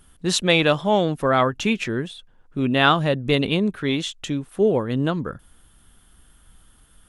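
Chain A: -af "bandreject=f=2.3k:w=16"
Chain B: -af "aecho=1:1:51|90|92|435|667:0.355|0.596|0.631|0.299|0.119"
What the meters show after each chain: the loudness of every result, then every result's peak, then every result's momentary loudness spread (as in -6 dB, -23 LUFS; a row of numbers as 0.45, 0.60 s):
-21.5, -18.5 LUFS; -3.5, -1.5 dBFS; 11, 13 LU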